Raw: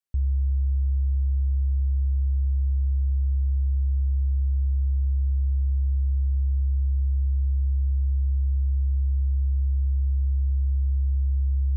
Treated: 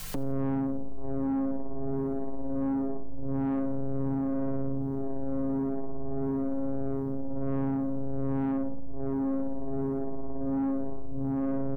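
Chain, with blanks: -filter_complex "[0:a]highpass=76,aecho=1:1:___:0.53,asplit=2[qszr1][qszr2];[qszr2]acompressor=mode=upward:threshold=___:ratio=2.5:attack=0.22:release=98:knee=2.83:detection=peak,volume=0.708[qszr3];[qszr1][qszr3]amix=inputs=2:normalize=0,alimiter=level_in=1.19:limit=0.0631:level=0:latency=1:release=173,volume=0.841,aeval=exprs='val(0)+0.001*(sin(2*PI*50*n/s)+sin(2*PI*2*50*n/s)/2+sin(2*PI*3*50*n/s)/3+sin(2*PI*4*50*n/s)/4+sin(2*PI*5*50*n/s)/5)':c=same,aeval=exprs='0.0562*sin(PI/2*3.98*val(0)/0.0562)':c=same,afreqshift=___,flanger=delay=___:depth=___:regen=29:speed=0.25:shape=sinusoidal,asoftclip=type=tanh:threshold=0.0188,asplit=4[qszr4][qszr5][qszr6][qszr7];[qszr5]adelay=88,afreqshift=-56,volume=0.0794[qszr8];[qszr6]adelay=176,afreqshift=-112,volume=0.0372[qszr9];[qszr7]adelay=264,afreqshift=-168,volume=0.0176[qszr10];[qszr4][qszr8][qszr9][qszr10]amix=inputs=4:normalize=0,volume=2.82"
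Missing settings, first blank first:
3.6, 0.0282, -67, 6.6, 5.8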